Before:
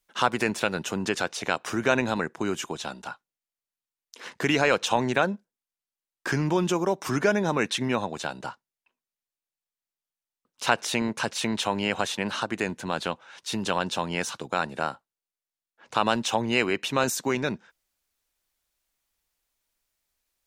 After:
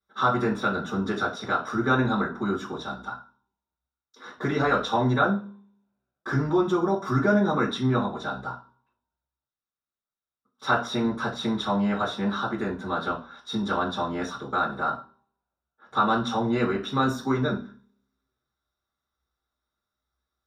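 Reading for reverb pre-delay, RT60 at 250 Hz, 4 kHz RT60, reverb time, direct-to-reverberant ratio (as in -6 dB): 3 ms, 0.55 s, 0.40 s, 0.40 s, -12.0 dB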